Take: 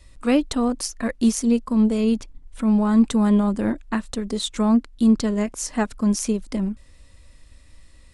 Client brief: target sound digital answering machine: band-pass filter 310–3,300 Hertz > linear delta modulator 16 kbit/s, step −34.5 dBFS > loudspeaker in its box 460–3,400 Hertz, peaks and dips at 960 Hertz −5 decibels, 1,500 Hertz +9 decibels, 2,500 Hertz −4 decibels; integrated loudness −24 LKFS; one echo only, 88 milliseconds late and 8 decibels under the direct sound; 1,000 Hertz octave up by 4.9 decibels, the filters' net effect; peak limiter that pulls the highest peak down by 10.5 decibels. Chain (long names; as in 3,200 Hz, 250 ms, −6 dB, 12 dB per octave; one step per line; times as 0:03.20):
parametric band 1,000 Hz +8 dB
brickwall limiter −17 dBFS
band-pass filter 310–3,300 Hz
single-tap delay 88 ms −8 dB
linear delta modulator 16 kbit/s, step −34.5 dBFS
loudspeaker in its box 460–3,400 Hz, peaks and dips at 960 Hz −5 dB, 1,500 Hz +9 dB, 2,500 Hz −4 dB
level +10.5 dB